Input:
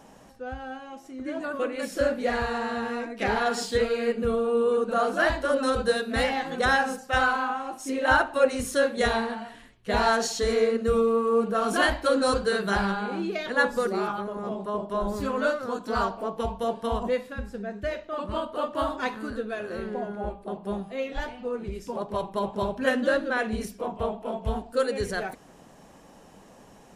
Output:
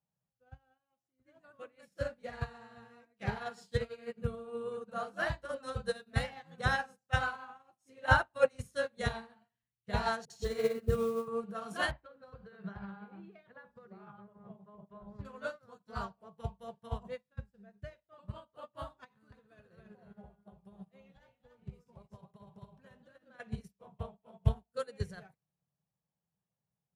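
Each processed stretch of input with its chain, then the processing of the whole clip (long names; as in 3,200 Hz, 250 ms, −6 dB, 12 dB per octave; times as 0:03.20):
0:10.25–0:11.28: parametric band 360 Hz +12 dB 0.3 octaves + all-pass dispersion highs, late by 49 ms, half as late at 440 Hz + noise that follows the level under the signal 28 dB
0:11.91–0:15.25: low-pass filter 2,300 Hz + downward compressor 16 to 1, threshold −25 dBFS
0:19.04–0:23.40: downward compressor 12 to 1, threshold −29 dBFS + single-tap delay 281 ms −5 dB
whole clip: high-pass filter 79 Hz 12 dB per octave; low shelf with overshoot 200 Hz +10 dB, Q 3; expander for the loud parts 2.5 to 1, over −44 dBFS; level −2.5 dB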